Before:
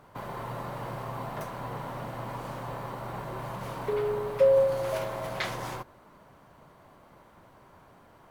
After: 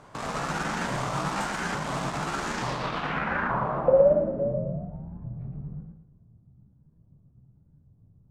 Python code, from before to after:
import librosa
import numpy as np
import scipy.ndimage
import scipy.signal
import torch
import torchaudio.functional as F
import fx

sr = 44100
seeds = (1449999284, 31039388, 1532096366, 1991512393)

p1 = fx.pitch_ramps(x, sr, semitones=8.5, every_ms=873)
p2 = fx.quant_dither(p1, sr, seeds[0], bits=6, dither='none')
p3 = p1 + (p2 * librosa.db_to_amplitude(-8.0))
p4 = fx.filter_sweep_lowpass(p3, sr, from_hz=7500.0, to_hz=120.0, start_s=2.5, end_s=4.86, q=2.0)
p5 = fx.echo_warbled(p4, sr, ms=115, feedback_pct=40, rate_hz=2.8, cents=150, wet_db=-6.0)
y = p5 * librosa.db_to_amplitude(4.0)